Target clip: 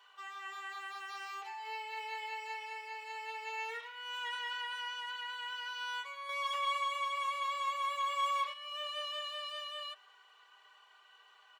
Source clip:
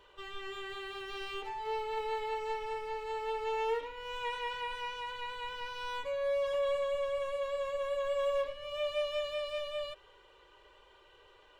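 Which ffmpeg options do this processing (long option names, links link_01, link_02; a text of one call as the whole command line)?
ffmpeg -i in.wav -filter_complex "[0:a]highpass=frequency=760:width=0.5412,highpass=frequency=760:width=1.3066,aecho=1:1:2.7:0.78,asettb=1/sr,asplit=3[link_01][link_02][link_03];[link_01]atrim=end=6.294[link_04];[link_02]atrim=start=6.29:end=8.54,asetpts=PTS-STARTPTS,afade=type=in:duration=0.004:curve=qsin,afade=type=out:start_time=2.246:duration=0.004:curve=qsin,acontrast=46[link_05];[link_03]atrim=start=8.536[link_06];[link_04][link_05]acrossfade=duration=0.004:curve1=hsin:curve2=qsin[link_07];[link_07][link_06]acrossfade=duration=0.004:curve1=qsin:curve2=hsin,asplit=2[link_08][link_09];[link_09]adelay=160,highpass=300,lowpass=3400,asoftclip=type=hard:threshold=-32dB,volume=-28dB[link_10];[link_08][link_10]amix=inputs=2:normalize=0,volume=-1dB" out.wav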